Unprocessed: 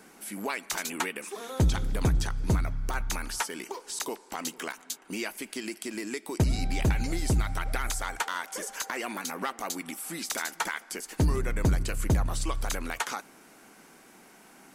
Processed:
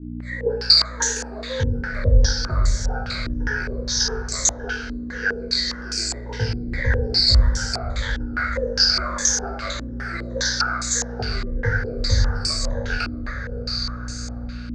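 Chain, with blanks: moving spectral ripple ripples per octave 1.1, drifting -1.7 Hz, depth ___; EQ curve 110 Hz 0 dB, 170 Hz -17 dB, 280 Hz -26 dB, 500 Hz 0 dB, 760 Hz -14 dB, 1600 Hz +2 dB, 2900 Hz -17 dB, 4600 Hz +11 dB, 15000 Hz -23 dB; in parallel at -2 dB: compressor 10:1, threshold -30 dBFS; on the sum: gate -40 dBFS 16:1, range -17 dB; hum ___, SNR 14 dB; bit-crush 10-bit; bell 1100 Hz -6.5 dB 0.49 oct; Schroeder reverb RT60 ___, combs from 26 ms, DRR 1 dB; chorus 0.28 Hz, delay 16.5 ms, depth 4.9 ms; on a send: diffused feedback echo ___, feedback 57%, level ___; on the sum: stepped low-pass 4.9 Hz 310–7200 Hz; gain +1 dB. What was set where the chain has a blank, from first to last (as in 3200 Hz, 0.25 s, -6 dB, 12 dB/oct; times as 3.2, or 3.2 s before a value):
22 dB, 60 Hz, 0.9 s, 0.629 s, -9.5 dB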